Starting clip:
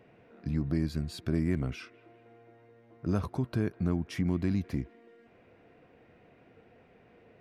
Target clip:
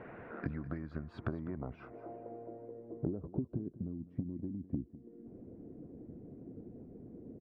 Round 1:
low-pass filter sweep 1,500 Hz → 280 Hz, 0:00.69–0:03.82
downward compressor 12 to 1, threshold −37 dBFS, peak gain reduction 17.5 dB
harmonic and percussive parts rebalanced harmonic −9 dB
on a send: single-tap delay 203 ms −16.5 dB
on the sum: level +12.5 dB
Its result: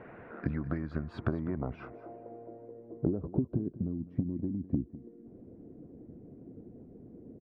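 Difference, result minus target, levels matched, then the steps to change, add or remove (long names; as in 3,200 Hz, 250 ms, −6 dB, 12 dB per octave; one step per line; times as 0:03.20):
downward compressor: peak gain reduction −6.5 dB
change: downward compressor 12 to 1, threshold −44 dBFS, peak gain reduction 24 dB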